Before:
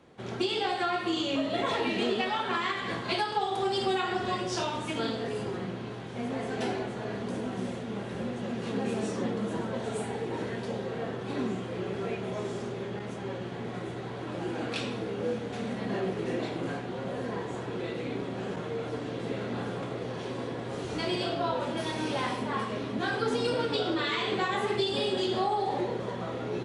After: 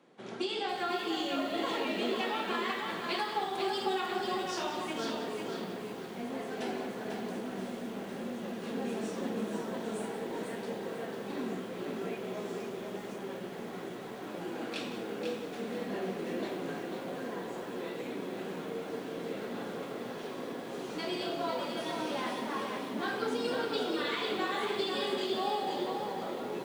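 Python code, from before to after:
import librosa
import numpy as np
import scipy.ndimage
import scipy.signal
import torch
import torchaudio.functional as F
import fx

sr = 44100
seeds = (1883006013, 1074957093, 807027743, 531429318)

p1 = scipy.signal.sosfilt(scipy.signal.butter(4, 170.0, 'highpass', fs=sr, output='sos'), x)
p2 = p1 + fx.echo_single(p1, sr, ms=179, db=-12.5, dry=0)
p3 = fx.echo_crushed(p2, sr, ms=495, feedback_pct=35, bits=8, wet_db=-4.5)
y = p3 * librosa.db_to_amplitude(-5.0)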